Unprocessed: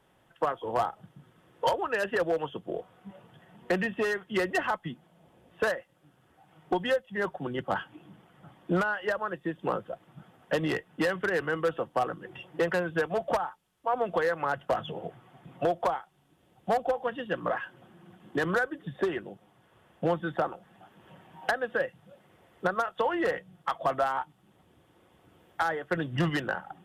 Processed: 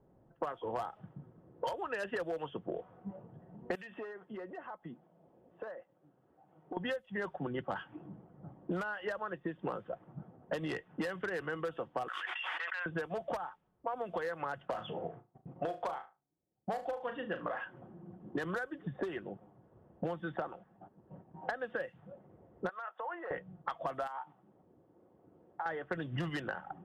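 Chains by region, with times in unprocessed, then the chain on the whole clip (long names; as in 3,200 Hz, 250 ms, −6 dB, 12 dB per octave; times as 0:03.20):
0:03.75–0:06.77: RIAA equalisation recording + downward compressor 5 to 1, threshold −41 dBFS
0:12.08–0:12.86: Bessel high-pass filter 1,900 Hz, order 4 + envelope flattener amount 100%
0:14.70–0:17.64: noise gate −53 dBFS, range −23 dB + low-shelf EQ 370 Hz −4 dB + flutter between parallel walls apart 6.3 metres, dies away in 0.24 s
0:20.15–0:21.60: noise gate −55 dBFS, range −8 dB + high-shelf EQ 7,600 Hz −10 dB
0:22.69–0:23.31: high-shelf EQ 4,100 Hz −10.5 dB + downward compressor 12 to 1, threshold −29 dBFS + high-pass filter 950 Hz
0:24.07–0:25.66: dynamic equaliser 870 Hz, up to +8 dB, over −45 dBFS, Q 1.3 + high-pass filter 320 Hz 6 dB per octave + downward compressor 12 to 1, threshold −32 dBFS
whole clip: low-pass that shuts in the quiet parts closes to 500 Hz, open at −23.5 dBFS; downward compressor 6 to 1, threshold −38 dBFS; level +3 dB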